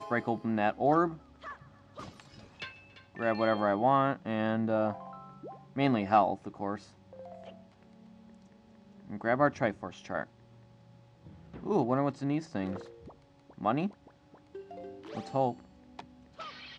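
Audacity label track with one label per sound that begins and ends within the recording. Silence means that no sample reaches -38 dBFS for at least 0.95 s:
9.100000	10.230000	sound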